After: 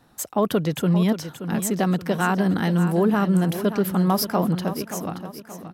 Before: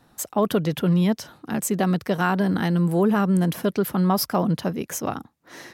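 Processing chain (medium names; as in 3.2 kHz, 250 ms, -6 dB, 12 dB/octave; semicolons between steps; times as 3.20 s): fade out at the end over 1.21 s; feedback delay 577 ms, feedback 43%, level -11 dB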